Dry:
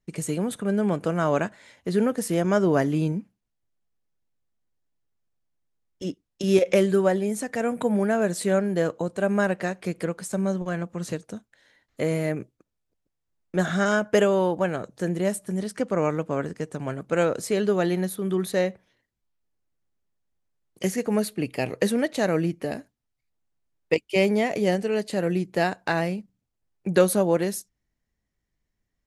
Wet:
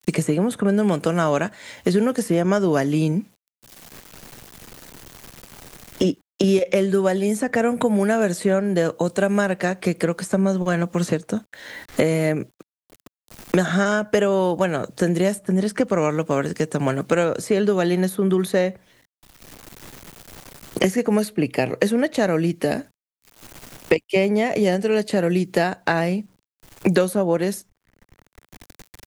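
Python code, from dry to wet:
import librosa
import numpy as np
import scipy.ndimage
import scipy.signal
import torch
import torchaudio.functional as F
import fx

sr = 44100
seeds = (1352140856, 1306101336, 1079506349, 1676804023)

y = fx.quant_dither(x, sr, seeds[0], bits=12, dither='none')
y = fx.band_squash(y, sr, depth_pct=100)
y = y * 10.0 ** (3.5 / 20.0)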